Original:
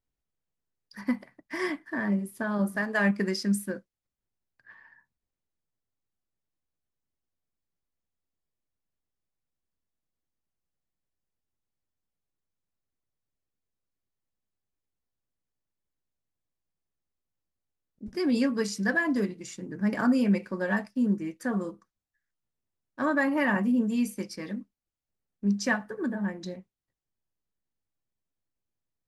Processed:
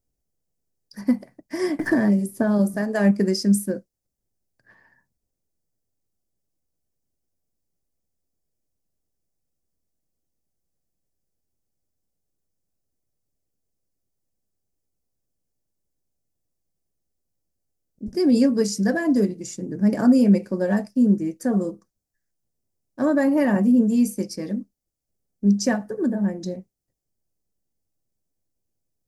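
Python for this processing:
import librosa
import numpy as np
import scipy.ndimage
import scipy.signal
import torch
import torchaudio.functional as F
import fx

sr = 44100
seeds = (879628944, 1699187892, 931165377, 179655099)

y = fx.band_shelf(x, sr, hz=1900.0, db=-11.5, octaves=2.4)
y = fx.band_squash(y, sr, depth_pct=100, at=(1.79, 2.74))
y = y * librosa.db_to_amplitude(8.0)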